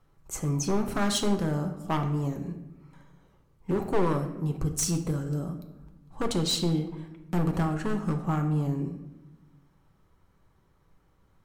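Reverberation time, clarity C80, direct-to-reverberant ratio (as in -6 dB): 1.0 s, 12.0 dB, 4.5 dB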